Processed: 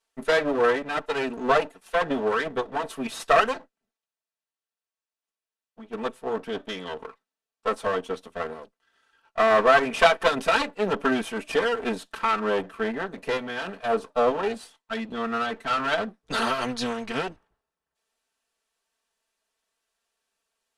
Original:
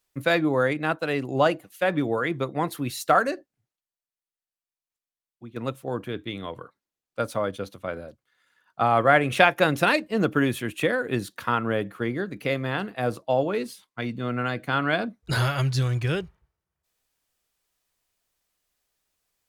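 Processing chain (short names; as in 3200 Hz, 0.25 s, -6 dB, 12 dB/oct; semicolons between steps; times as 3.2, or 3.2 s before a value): minimum comb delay 4.2 ms; LPF 12000 Hz 24 dB/oct; tone controls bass -12 dB, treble -5 dB; notch 2300 Hz, Q 11; wide varispeed 0.938×; gain +3.5 dB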